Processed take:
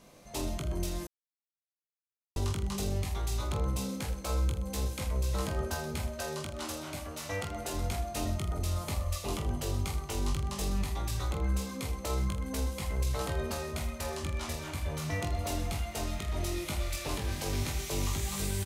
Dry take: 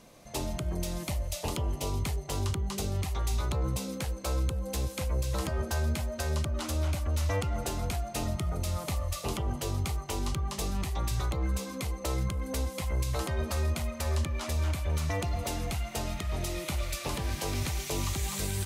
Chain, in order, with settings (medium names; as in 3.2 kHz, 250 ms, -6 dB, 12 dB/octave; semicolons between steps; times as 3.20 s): 6.07–7.74 s: high-pass 210 Hz 6 dB/octave; reverse bouncing-ball echo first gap 20 ms, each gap 1.3×, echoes 5; 1.07–2.36 s: mute; trim -3.5 dB